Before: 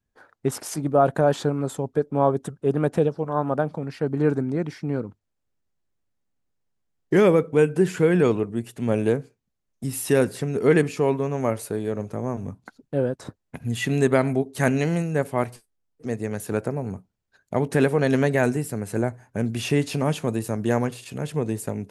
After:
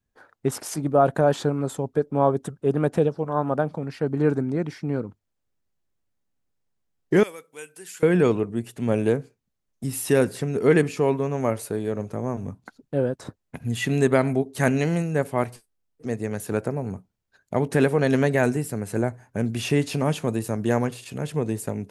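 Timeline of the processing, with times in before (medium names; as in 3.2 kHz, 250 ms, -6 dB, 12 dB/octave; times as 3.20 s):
7.23–8.03 s: differentiator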